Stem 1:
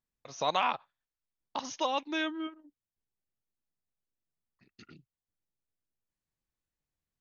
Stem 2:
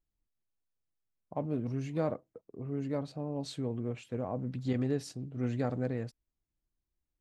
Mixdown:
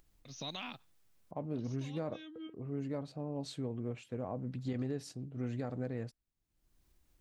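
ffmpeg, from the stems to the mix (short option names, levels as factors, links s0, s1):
-filter_complex "[0:a]equalizer=f=125:t=o:w=1:g=10,equalizer=f=250:t=o:w=1:g=9,equalizer=f=500:t=o:w=1:g=-5,equalizer=f=1000:t=o:w=1:g=-10,equalizer=f=4000:t=o:w=1:g=6,alimiter=limit=0.0708:level=0:latency=1:release=90,volume=0.422[s0];[1:a]alimiter=level_in=1.06:limit=0.0631:level=0:latency=1:release=161,volume=0.944,acompressor=mode=upward:threshold=0.00355:ratio=2.5,volume=0.708,asplit=2[s1][s2];[s2]apad=whole_len=317572[s3];[s0][s3]sidechaincompress=threshold=0.00447:ratio=12:attack=11:release=518[s4];[s4][s1]amix=inputs=2:normalize=0"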